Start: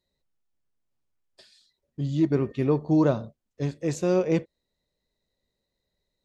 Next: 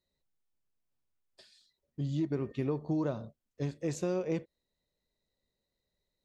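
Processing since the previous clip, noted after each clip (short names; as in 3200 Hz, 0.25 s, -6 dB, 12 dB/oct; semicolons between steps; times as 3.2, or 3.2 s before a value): compressor 5:1, threshold -24 dBFS, peak gain reduction 7.5 dB; gain -4.5 dB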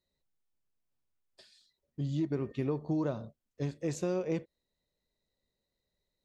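nothing audible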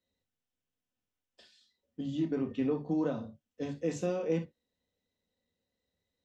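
reverb, pre-delay 3 ms, DRR 3 dB; gain -7 dB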